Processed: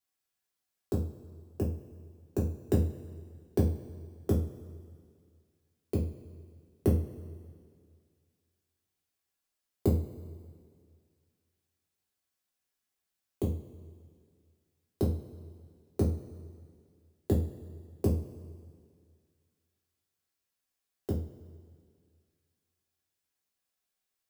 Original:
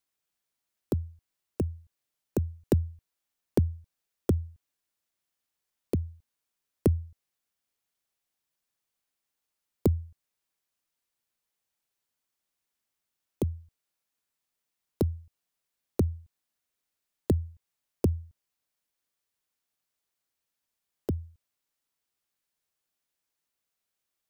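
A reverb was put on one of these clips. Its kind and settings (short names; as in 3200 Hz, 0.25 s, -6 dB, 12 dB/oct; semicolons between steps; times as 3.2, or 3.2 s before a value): two-slope reverb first 0.35 s, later 2.1 s, from -18 dB, DRR -5 dB; gain -7.5 dB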